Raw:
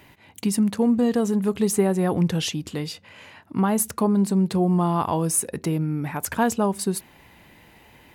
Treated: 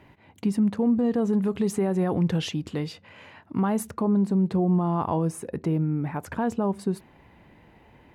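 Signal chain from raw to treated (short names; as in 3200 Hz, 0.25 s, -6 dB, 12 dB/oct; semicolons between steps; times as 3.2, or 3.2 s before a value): LPF 1200 Hz 6 dB/oct, from 1.33 s 2200 Hz, from 3.87 s 1000 Hz; limiter -15.5 dBFS, peak gain reduction 7 dB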